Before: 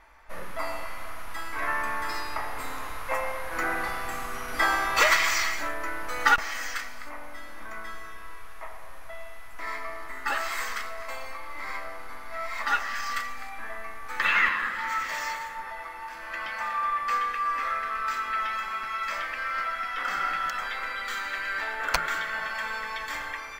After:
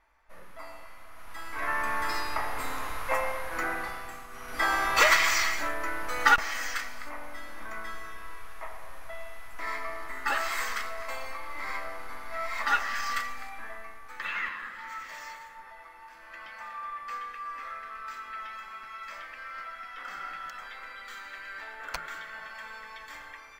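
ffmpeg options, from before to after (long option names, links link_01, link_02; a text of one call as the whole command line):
ffmpeg -i in.wav -af "volume=13dB,afade=type=in:start_time=1.1:duration=0.91:silence=0.223872,afade=type=out:start_time=3.13:duration=1.15:silence=0.223872,afade=type=in:start_time=4.28:duration=0.59:silence=0.251189,afade=type=out:start_time=13.12:duration=1.07:silence=0.298538" out.wav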